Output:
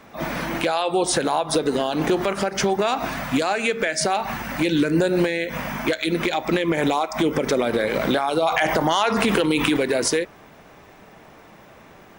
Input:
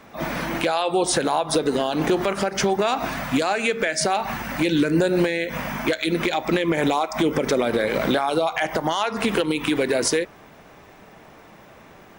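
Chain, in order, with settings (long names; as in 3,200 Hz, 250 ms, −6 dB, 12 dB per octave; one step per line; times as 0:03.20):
0:08.42–0:09.77: envelope flattener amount 70%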